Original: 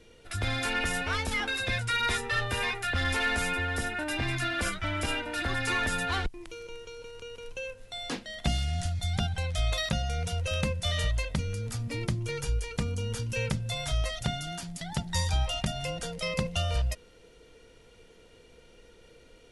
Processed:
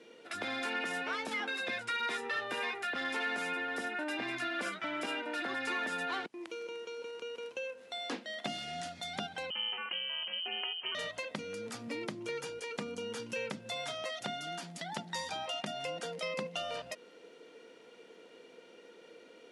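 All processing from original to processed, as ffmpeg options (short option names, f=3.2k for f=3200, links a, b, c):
-filter_complex "[0:a]asettb=1/sr,asplit=3[a][b][c];[a]atrim=end=9.504[d];[b]atrim=start=9.5:end=10.95,asetpts=PTS-STARTPTS,afade=t=in:d=0.004:c=qsin,afade=t=out:st=1.446:d=0.004:c=qsin,aeval=exprs='val(0)*sin(2*PI*170*n/s)':c=same,lowpass=f=2.7k:t=q:w=0.5098,lowpass=f=2.7k:t=q:w=0.6013,lowpass=f=2.7k:t=q:w=0.9,lowpass=f=2.7k:t=q:w=2.563,afreqshift=-3200[e];[c]atrim=start=10.946[f];[d][e]acrossfade=d=0.004:c1=hsin:c2=qsin[g];[g][f]acrossfade=d=0.004:c1=qsin:c2=hsin,highpass=f=230:w=0.5412,highpass=f=230:w=1.3066,aemphasis=mode=reproduction:type=50kf,acompressor=threshold=-41dB:ratio=2,volume=2.5dB"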